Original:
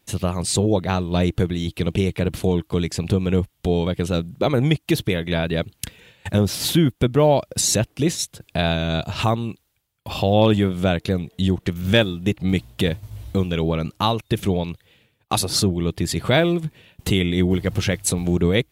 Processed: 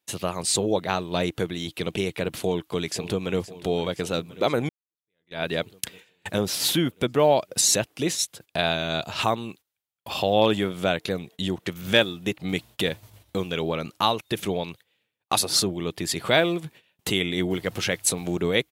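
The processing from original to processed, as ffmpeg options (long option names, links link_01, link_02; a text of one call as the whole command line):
ffmpeg -i in.wav -filter_complex "[0:a]asplit=2[link_01][link_02];[link_02]afade=type=in:start_time=2.35:duration=0.01,afade=type=out:start_time=3.38:duration=0.01,aecho=0:1:520|1040|1560|2080|2600|3120|3640|4160:0.16788|0.117516|0.0822614|0.057583|0.0403081|0.0282157|0.019751|0.0138257[link_03];[link_01][link_03]amix=inputs=2:normalize=0,asplit=2[link_04][link_05];[link_04]atrim=end=4.69,asetpts=PTS-STARTPTS,afade=type=out:start_time=4.686:duration=0.004:curve=hsin[link_06];[link_05]atrim=start=4.69,asetpts=PTS-STARTPTS,afade=type=in:duration=0.74:curve=exp[link_07];[link_06][link_07]concat=n=2:v=0:a=1,highpass=frequency=470:poles=1,agate=range=-14dB:threshold=-46dB:ratio=16:detection=peak" out.wav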